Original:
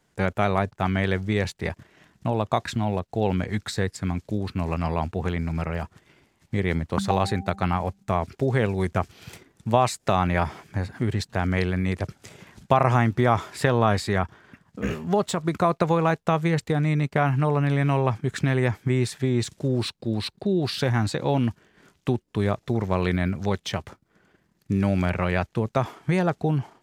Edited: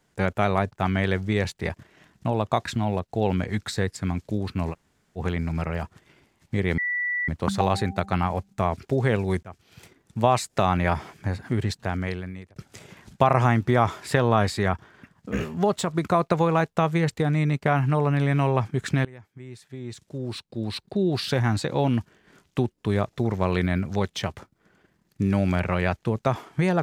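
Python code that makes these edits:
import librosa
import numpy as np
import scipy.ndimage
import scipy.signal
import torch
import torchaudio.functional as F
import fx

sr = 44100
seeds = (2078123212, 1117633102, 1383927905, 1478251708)

y = fx.edit(x, sr, fx.room_tone_fill(start_s=4.72, length_s=0.46, crossfade_s=0.06),
    fx.insert_tone(at_s=6.78, length_s=0.5, hz=1960.0, db=-23.5),
    fx.fade_in_from(start_s=8.93, length_s=0.87, floor_db=-22.0),
    fx.fade_out_span(start_s=11.16, length_s=0.9),
    fx.fade_in_from(start_s=18.55, length_s=1.96, curve='qua', floor_db=-22.5), tone=tone)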